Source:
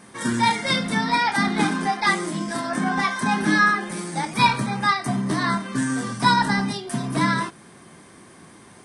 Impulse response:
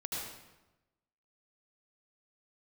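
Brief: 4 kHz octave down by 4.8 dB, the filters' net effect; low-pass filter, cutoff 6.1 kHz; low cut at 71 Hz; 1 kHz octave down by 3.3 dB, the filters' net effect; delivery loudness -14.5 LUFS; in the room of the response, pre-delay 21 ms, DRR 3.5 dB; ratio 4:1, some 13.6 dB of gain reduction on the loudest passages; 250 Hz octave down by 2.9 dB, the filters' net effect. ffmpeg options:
-filter_complex "[0:a]highpass=71,lowpass=6100,equalizer=f=250:t=o:g=-3.5,equalizer=f=1000:t=o:g=-3.5,equalizer=f=4000:t=o:g=-4.5,acompressor=threshold=0.0224:ratio=4,asplit=2[s0][s1];[1:a]atrim=start_sample=2205,adelay=21[s2];[s1][s2]afir=irnorm=-1:irlink=0,volume=0.501[s3];[s0][s3]amix=inputs=2:normalize=0,volume=8.41"

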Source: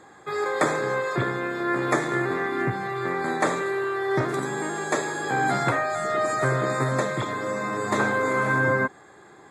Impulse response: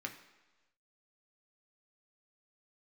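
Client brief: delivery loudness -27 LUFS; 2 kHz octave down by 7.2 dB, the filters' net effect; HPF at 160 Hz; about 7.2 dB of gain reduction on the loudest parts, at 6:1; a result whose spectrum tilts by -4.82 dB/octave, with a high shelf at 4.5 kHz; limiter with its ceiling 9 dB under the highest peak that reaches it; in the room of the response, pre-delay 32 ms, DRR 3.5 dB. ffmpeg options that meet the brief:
-filter_complex "[0:a]highpass=160,equalizer=f=2000:t=o:g=-9,highshelf=f=4500:g=-5.5,acompressor=threshold=0.0398:ratio=6,alimiter=level_in=1.19:limit=0.0631:level=0:latency=1,volume=0.841,asplit=2[s0][s1];[1:a]atrim=start_sample=2205,adelay=32[s2];[s1][s2]afir=irnorm=-1:irlink=0,volume=0.668[s3];[s0][s3]amix=inputs=2:normalize=0,volume=2"

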